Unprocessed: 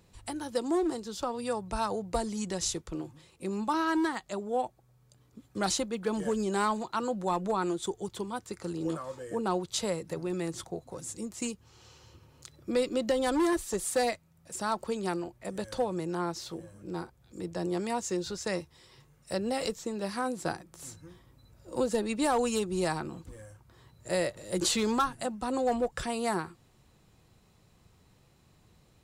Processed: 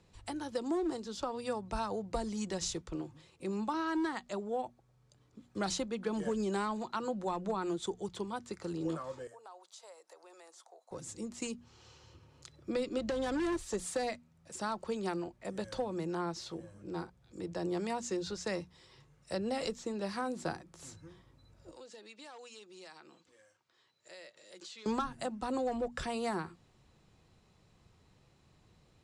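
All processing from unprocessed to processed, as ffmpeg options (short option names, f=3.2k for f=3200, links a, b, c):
-filter_complex "[0:a]asettb=1/sr,asplit=3[a][b][c];[a]atrim=end=9.274[d];[b]atrim=start=9.27:end=10.91,asetpts=PTS-STARTPTS,afade=t=in:d=0.004:c=qsin,afade=t=out:st=1.636:d=0.004:c=qsin,highpass=f=660:w=0.5412,highpass=f=660:w=1.3066,equalizer=f=2.4k:t=o:w=2.3:g=-10,acompressor=threshold=-51dB:ratio=2.5:attack=3.2:release=140:knee=1:detection=peak[e];[c]atrim=start=10.906[f];[d][e]acrossfade=d=0.004:c1=hsin:c2=qsin[g];[g][f]acrossfade=d=0.004:c1=qsin:c2=hsin,asettb=1/sr,asplit=3[h][i][j];[h]atrim=end=12.984[k];[i]atrim=start=12.98:end=13.58,asetpts=PTS-STARTPTS,afade=t=in:d=0.004:c=qsin,afade=t=out:st=0.596:d=0.004:c=qsin,volume=26dB,asoftclip=hard,volume=-26dB,lowpass=11k,aeval=exprs='val(0)+0.00398*(sin(2*PI*50*n/s)+sin(2*PI*2*50*n/s)/2+sin(2*PI*3*50*n/s)/3+sin(2*PI*4*50*n/s)/4+sin(2*PI*5*50*n/s)/5)':c=same[l];[j]atrim=start=13.576[m];[k][l]acrossfade=d=0.004:c1=hsin:c2=qsin[n];[n][m]acrossfade=d=0.004:c1=qsin:c2=hsin,asettb=1/sr,asplit=3[o][p][q];[o]atrim=end=21.714[r];[p]atrim=start=21.71:end=24.86,asetpts=PTS-STARTPTS,afade=t=in:d=0.004:c=qsin,afade=t=out:st=3.146:d=0.004:c=qsin,highpass=600,lowpass=6.1k,equalizer=f=860:t=o:w=2.3:g=-10.5,acompressor=threshold=-49dB:ratio=2.5:attack=3.2:release=140:knee=1:detection=peak[s];[q]atrim=start=24.856[t];[r][s]acrossfade=d=0.004:c1=hsin:c2=qsin[u];[u][t]acrossfade=d=0.004:c1=qsin:c2=hsin,lowpass=7.2k,bandreject=f=60:t=h:w=6,bandreject=f=120:t=h:w=6,bandreject=f=180:t=h:w=6,bandreject=f=240:t=h:w=6,acrossover=split=250[v][w];[w]acompressor=threshold=-29dB:ratio=6[x];[v][x]amix=inputs=2:normalize=0,volume=-2.5dB"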